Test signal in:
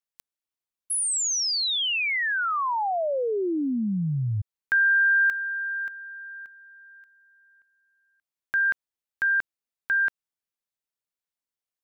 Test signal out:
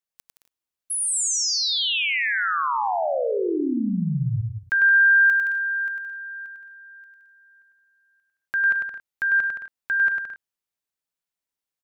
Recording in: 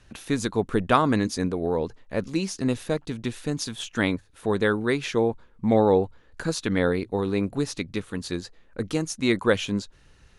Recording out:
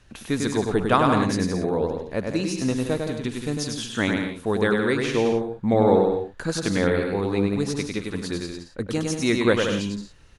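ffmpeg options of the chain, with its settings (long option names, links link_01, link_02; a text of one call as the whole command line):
ffmpeg -i in.wav -af "aecho=1:1:100|170|219|253.3|277.3:0.631|0.398|0.251|0.158|0.1" out.wav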